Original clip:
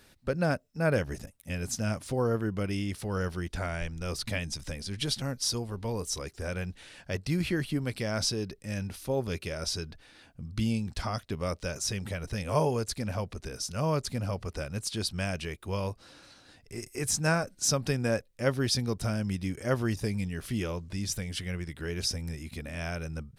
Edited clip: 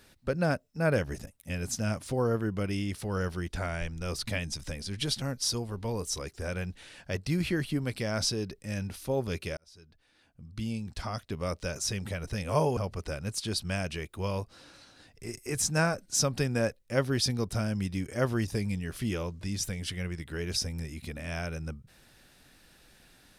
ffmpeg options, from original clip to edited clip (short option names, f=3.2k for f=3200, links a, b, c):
-filter_complex "[0:a]asplit=3[a][b][c];[a]atrim=end=9.57,asetpts=PTS-STARTPTS,afade=t=out:st=9.566:d=0.004:c=hsin[d];[b]atrim=start=9.57:end=12.772,asetpts=PTS-STARTPTS,afade=t=in:d=2.06[e];[c]atrim=start=14.258[f];[d][e]concat=n=2:v=0:a=1[g];[g][f]acrossfade=d=0.004:c1=hsin:c2=hsin"